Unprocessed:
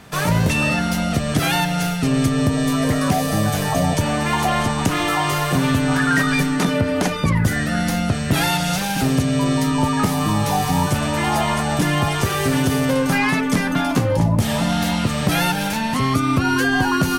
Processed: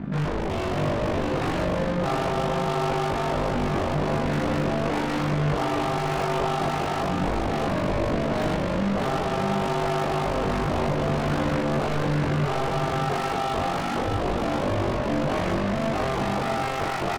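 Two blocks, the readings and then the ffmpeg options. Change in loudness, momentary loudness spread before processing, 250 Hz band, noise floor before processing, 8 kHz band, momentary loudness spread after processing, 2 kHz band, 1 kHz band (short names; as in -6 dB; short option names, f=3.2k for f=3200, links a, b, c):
-6.5 dB, 3 LU, -8.0 dB, -23 dBFS, -15.5 dB, 1 LU, -9.5 dB, -4.0 dB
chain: -filter_complex "[0:a]lowpass=1.5k,lowshelf=f=370:t=q:w=3:g=9.5,alimiter=limit=-3.5dB:level=0:latency=1:release=10,acontrast=79,aeval=exprs='0.335*(abs(mod(val(0)/0.335+3,4)-2)-1)':c=same,tremolo=f=50:d=0.75,asoftclip=type=tanh:threshold=-26.5dB,asplit=2[a][b];[b]adelay=21,volume=-2.5dB[c];[a][c]amix=inputs=2:normalize=0,asplit=2[d][e];[e]aecho=0:1:640:0.668[f];[d][f]amix=inputs=2:normalize=0"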